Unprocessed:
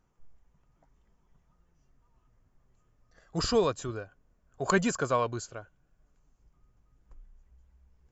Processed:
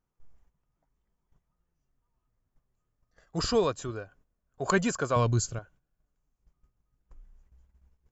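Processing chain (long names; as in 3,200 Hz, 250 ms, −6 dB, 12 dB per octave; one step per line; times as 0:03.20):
noise gate −60 dBFS, range −11 dB
0:05.16–0:05.59: bass and treble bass +15 dB, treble +11 dB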